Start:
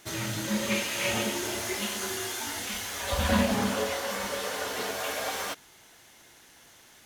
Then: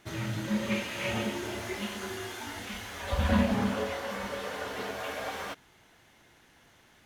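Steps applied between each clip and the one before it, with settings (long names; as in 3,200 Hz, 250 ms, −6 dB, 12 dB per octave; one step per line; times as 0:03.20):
bass and treble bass +5 dB, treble −10 dB
level −3 dB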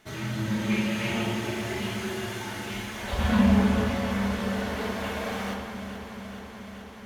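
delay that swaps between a low-pass and a high-pass 214 ms, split 1,200 Hz, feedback 87%, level −9.5 dB
convolution reverb RT60 1.4 s, pre-delay 5 ms, DRR 1 dB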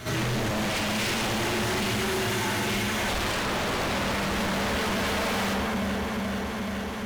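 echo ahead of the sound 58 ms −17 dB
power curve on the samples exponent 0.7
wave folding −25 dBFS
level +2 dB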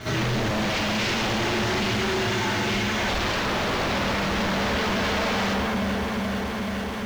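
low-pass filter 6,300 Hz 24 dB per octave
in parallel at −9 dB: bit reduction 6 bits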